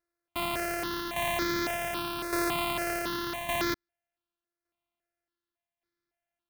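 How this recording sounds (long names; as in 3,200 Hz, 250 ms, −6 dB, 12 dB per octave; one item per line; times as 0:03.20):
a buzz of ramps at a fixed pitch in blocks of 128 samples
tremolo saw down 0.86 Hz, depth 60%
aliases and images of a low sample rate 7,200 Hz, jitter 0%
notches that jump at a steady rate 3.6 Hz 820–2,800 Hz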